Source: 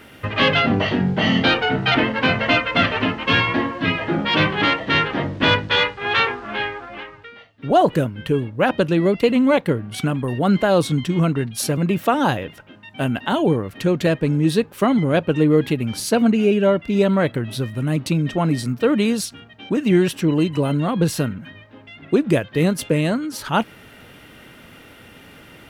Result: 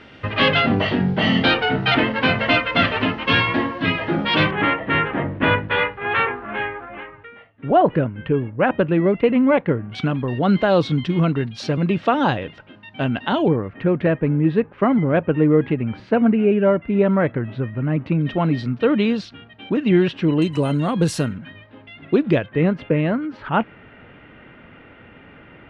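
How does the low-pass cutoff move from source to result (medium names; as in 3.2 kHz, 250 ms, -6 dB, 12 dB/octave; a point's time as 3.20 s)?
low-pass 24 dB/octave
5 kHz
from 4.51 s 2.5 kHz
from 9.95 s 4.5 kHz
from 13.48 s 2.3 kHz
from 18.21 s 3.8 kHz
from 20.42 s 9.8 kHz
from 21.37 s 4.1 kHz
from 22.46 s 2.5 kHz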